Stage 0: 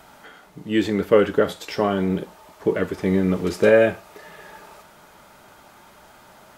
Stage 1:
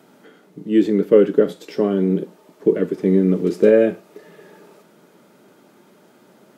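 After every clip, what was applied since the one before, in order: HPF 160 Hz 24 dB/oct; resonant low shelf 570 Hz +10 dB, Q 1.5; gain -6.5 dB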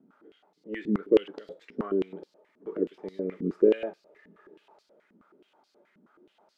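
stepped band-pass 9.4 Hz 230–4600 Hz; gain -1 dB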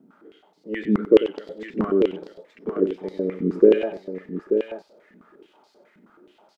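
tapped delay 92/885 ms -12.5/-7.5 dB; gain +6.5 dB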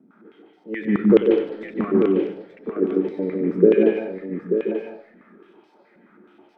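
wow and flutter 28 cents; reverb RT60 0.50 s, pre-delay 0.137 s, DRR 1.5 dB; gain -8 dB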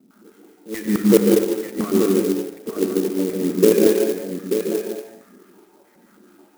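non-linear reverb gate 0.25 s rising, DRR 5.5 dB; clock jitter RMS 0.069 ms

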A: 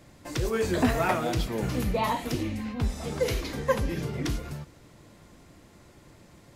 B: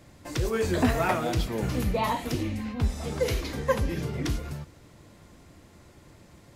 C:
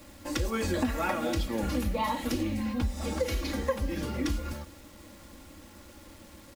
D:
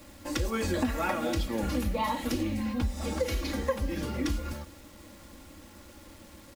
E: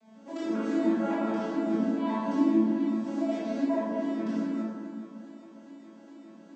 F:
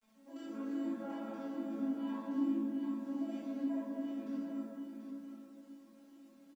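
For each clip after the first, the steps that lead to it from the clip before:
bell 79 Hz +4.5 dB 0.59 oct
comb 3.6 ms, depth 86%; compressor 5:1, threshold -26 dBFS, peak gain reduction 11 dB; bit-crush 9-bit
nothing audible
arpeggiated vocoder major triad, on A3, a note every 0.138 s; reverb RT60 2.5 s, pre-delay 13 ms, DRR -11 dB; gain -7.5 dB
bit-crush 10-bit; resonator 270 Hz, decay 0.21 s, harmonics all, mix 90%; echo 0.735 s -8 dB; gain -2 dB

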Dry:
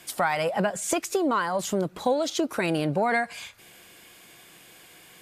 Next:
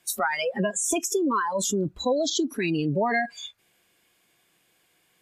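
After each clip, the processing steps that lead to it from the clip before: spectral noise reduction 26 dB; in parallel at -1 dB: negative-ratio compressor -37 dBFS, ratio -1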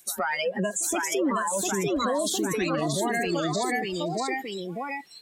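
echoes that change speed 0.757 s, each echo +1 st, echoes 3; limiter -18 dBFS, peak gain reduction 7 dB; pre-echo 0.117 s -21 dB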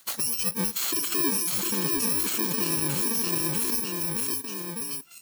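FFT order left unsorted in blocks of 64 samples

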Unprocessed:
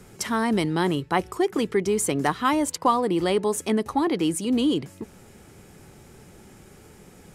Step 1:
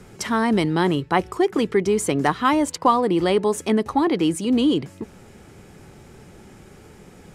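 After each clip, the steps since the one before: high shelf 8200 Hz -10 dB; gain +3.5 dB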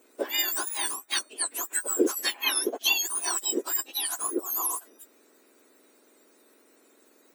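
spectrum mirrored in octaves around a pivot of 1800 Hz; upward expander 1.5:1, over -37 dBFS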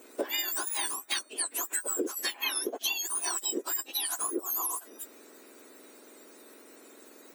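compressor 6:1, threshold -37 dBFS, peak gain reduction 18.5 dB; gain +7.5 dB

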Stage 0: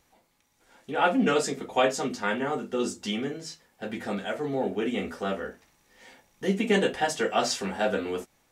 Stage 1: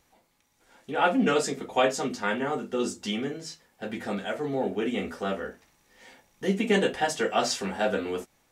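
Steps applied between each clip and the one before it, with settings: nothing audible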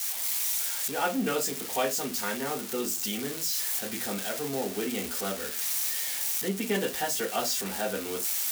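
switching spikes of -19 dBFS; recorder AGC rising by 9.8 dB/s; gain -5.5 dB

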